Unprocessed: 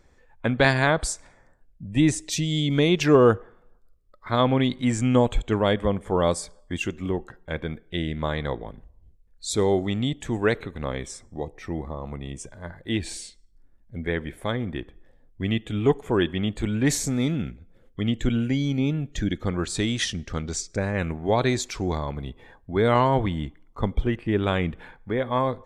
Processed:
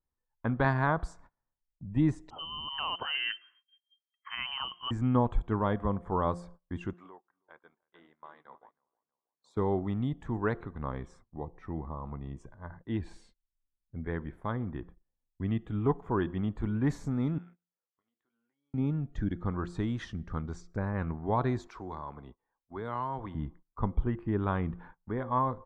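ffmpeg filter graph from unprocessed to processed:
-filter_complex "[0:a]asettb=1/sr,asplit=3[s0][s1][s2];[s0]atrim=end=2.304[s3];[s1]atrim=start=2.3:end=4.91,asetpts=PTS-STARTPTS,afade=t=in:d=0.004:c=qsin,afade=t=out:st=2.606:d=0.004:c=qsin,lowshelf=f=170:g=8.5,lowpass=f=2700:t=q:w=0.5098,lowpass=f=2700:t=q:w=0.6013,lowpass=f=2700:t=q:w=0.9,lowpass=f=2700:t=q:w=2.563,afreqshift=-3200[s4];[s2]atrim=start=4.906[s5];[s3][s4]acrossfade=d=0.004:c1=hsin:c2=qsin[s6];[s6][s5]acrossfade=d=0.004:c1=qsin:c2=hsin,asettb=1/sr,asplit=3[s7][s8][s9];[s7]atrim=end=6.934[s10];[s8]atrim=start=6.93:end=9.57,asetpts=PTS-STARTPTS,afade=t=in:d=0.004:c=qsin,afade=t=out:st=2.636:d=0.004:c=qsin,highpass=630,acompressor=threshold=0.01:ratio=4:attack=3.2:release=140:knee=1:detection=peak,asplit=2[s11][s12];[s12]adelay=320,lowpass=f=2000:p=1,volume=0.422,asplit=2[s13][s14];[s14]adelay=320,lowpass=f=2000:p=1,volume=0.45,asplit=2[s15][s16];[s16]adelay=320,lowpass=f=2000:p=1,volume=0.45,asplit=2[s17][s18];[s18]adelay=320,lowpass=f=2000:p=1,volume=0.45,asplit=2[s19][s20];[s20]adelay=320,lowpass=f=2000:p=1,volume=0.45[s21];[s11][s13][s15][s17][s19][s21]amix=inputs=6:normalize=0,atrim=end_sample=116424[s22];[s9]atrim=start=9.566[s23];[s10][s22]acrossfade=d=0.004:c1=hsin:c2=qsin[s24];[s24][s23]acrossfade=d=0.004:c1=qsin:c2=hsin,asettb=1/sr,asplit=3[s25][s26][s27];[s25]atrim=end=17.384[s28];[s26]atrim=start=17.38:end=18.74,asetpts=PTS-STARTPTS,afade=t=in:d=0.004:c=qsin,afade=t=out:st=1.356:d=0.004:c=qsin,highpass=650,acompressor=threshold=0.00447:ratio=6:attack=3.2:release=140:knee=1:detection=peak,asplit=2[s29][s30];[s30]adelay=21,volume=0.398[s31];[s29][s31]amix=inputs=2:normalize=0,atrim=end_sample=59976[s32];[s27]atrim=start=18.736[s33];[s28][s32]acrossfade=d=0.004:c1=hsin:c2=qsin[s34];[s34][s33]acrossfade=d=0.004:c1=qsin:c2=hsin,asettb=1/sr,asplit=3[s35][s36][s37];[s35]atrim=end=21.674[s38];[s36]atrim=start=21.67:end=23.35,asetpts=PTS-STARTPTS,afade=t=in:d=0.004:c=qsin,afade=t=out:st=1.676:d=0.004:c=qsin,bass=f=250:g=-13,treble=f=4000:g=0,acrossover=split=190|3000[s39][s40][s41];[s40]acompressor=threshold=0.0224:ratio=2:attack=3.2:release=140:knee=2.83:detection=peak[s42];[s39][s42][s41]amix=inputs=3:normalize=0[s43];[s37]atrim=start=23.346[s44];[s38][s43]acrossfade=d=0.004:c1=hsin:c2=qsin[s45];[s45][s44]acrossfade=d=0.004:c1=qsin:c2=hsin,bandreject=f=174.6:t=h:w=4,bandreject=f=349.2:t=h:w=4,bandreject=f=523.8:t=h:w=4,bandreject=f=698.4:t=h:w=4,agate=range=0.0562:threshold=0.00708:ratio=16:detection=peak,firequalizer=gain_entry='entry(150,0);entry(550,-7);entry(1000,4);entry(2300,-15);entry(8800,-26)':delay=0.05:min_phase=1,volume=0.596"

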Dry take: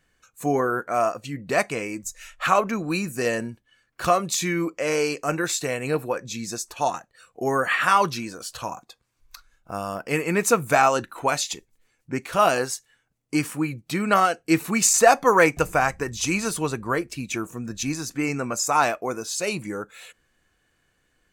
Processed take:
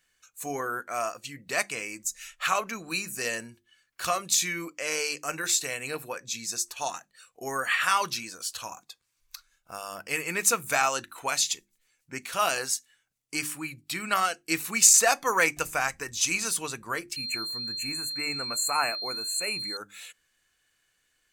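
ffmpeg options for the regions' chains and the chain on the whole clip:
-filter_complex "[0:a]asettb=1/sr,asplit=3[s0][s1][s2];[s0]atrim=end=13.524[s3];[s1]atrim=start=13.52:end=14.23,asetpts=PTS-STARTPTS,afade=t=in:d=0.004:c=qsin,afade=t=out:st=0.706:d=0.004:c=qsin,equalizer=f=480:t=o:w=0.25:g=-10.5,bandreject=f=6200:w=9.4[s4];[s2]atrim=start=14.226[s5];[s3][s4]acrossfade=d=0.004:c1=hsin:c2=qsin[s6];[s6][s5]acrossfade=d=0.004:c1=qsin:c2=hsin,asettb=1/sr,asplit=3[s7][s8][s9];[s7]atrim=end=17.164[s10];[s8]atrim=start=17.16:end=19.77,asetpts=PTS-STARTPTS,afade=t=in:d=0.004:c=qsin,afade=t=out:st=2.606:d=0.004:c=qsin,asuperstop=centerf=4500:order=12:qfactor=0.98,aeval=exprs='val(0)+0.0224*sin(2*PI*4200*n/s)':c=same[s11];[s9]atrim=start=19.766[s12];[s10][s11]acrossfade=d=0.004:c1=hsin:c2=qsin[s13];[s13][s12]acrossfade=d=0.004:c1=qsin:c2=hsin,tiltshelf=f=1400:g=-8,bandreject=f=50:t=h:w=6,bandreject=f=100:t=h:w=6,bandreject=f=150:t=h:w=6,bandreject=f=200:t=h:w=6,bandreject=f=250:t=h:w=6,bandreject=f=300:t=h:w=6,bandreject=f=350:t=h:w=6,volume=0.562"

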